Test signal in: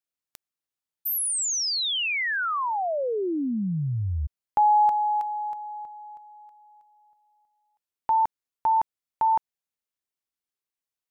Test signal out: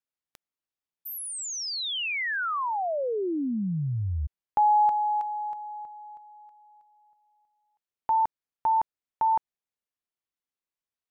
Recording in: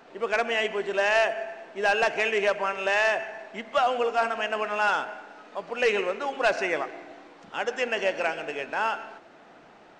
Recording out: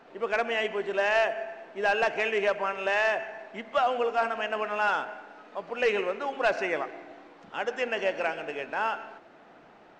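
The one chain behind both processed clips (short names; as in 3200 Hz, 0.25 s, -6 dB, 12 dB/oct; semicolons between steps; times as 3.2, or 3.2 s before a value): high shelf 5000 Hz -9 dB; gain -1.5 dB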